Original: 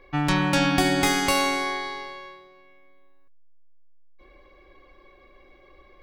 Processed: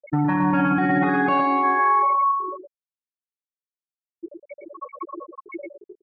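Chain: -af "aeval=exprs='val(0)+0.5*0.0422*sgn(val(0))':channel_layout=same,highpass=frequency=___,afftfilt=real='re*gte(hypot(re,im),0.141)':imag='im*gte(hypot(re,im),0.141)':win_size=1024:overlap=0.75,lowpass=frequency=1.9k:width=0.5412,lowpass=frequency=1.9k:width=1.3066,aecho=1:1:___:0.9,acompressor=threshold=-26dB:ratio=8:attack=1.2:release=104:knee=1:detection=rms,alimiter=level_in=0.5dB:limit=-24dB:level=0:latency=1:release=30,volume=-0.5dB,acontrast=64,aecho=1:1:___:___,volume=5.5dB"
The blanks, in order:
140, 6.5, 113, 0.473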